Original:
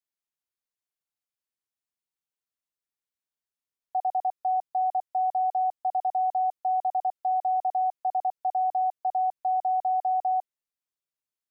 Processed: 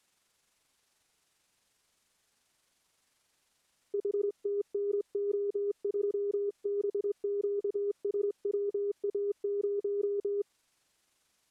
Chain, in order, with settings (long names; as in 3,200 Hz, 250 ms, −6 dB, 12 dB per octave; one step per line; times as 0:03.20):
pitch shift by two crossfaded delay taps −10.5 semitones
compressor whose output falls as the input rises −38 dBFS, ratio −1
level +7 dB